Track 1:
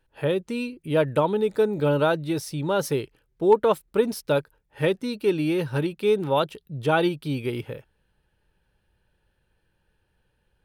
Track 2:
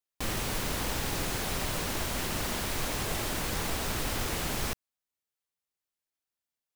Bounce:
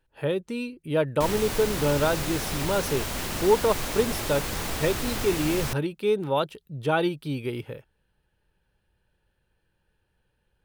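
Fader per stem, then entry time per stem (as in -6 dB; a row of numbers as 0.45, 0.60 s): -2.5, +1.5 dB; 0.00, 1.00 s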